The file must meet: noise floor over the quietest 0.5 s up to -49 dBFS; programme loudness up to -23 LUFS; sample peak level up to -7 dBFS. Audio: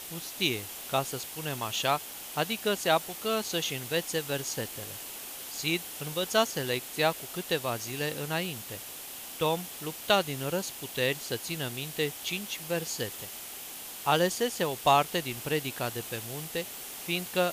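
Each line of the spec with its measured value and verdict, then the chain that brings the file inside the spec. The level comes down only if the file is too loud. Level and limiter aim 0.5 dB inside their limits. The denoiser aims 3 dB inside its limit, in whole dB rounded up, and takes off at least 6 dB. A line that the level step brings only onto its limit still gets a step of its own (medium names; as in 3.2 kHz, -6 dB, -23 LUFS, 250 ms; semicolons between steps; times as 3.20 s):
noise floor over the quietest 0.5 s -42 dBFS: fail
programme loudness -31.0 LUFS: pass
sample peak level -10.5 dBFS: pass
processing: noise reduction 10 dB, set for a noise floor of -42 dBFS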